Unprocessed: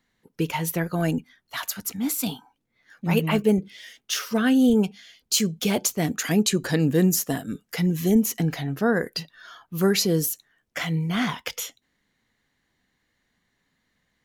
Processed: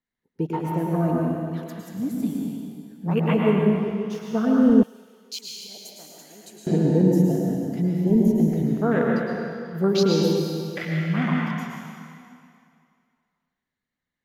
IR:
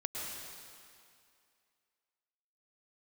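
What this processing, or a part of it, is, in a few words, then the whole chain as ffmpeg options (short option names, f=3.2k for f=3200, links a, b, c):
swimming-pool hall: -filter_complex "[0:a]afwtdn=0.0447[a];[1:a]atrim=start_sample=2205[b];[a][b]afir=irnorm=-1:irlink=0,highshelf=f=4.5k:g=-5.5,asettb=1/sr,asplit=3[c][d][e];[c]atrim=end=4.834[f];[d]atrim=start=4.83:end=6.67,asetpts=PTS-STARTPTS,afade=t=in:d=0.004:c=qsin,afade=t=out:st=1.836:d=0.004:c=qsin,aderivative[g];[e]atrim=start=6.666[h];[f][g]acrossfade=d=0.004:c1=hsin:c2=qsin[i];[i][h]acrossfade=d=0.004:c1=qsin:c2=hsin,volume=1dB"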